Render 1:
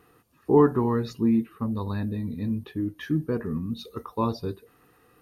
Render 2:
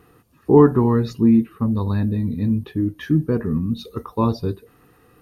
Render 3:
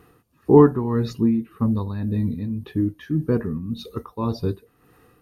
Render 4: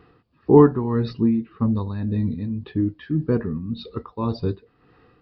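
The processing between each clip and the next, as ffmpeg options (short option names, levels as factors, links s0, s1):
-af "lowshelf=f=300:g=6.5,volume=1.5"
-af "tremolo=f=1.8:d=0.62"
-af "aresample=11025,aresample=44100"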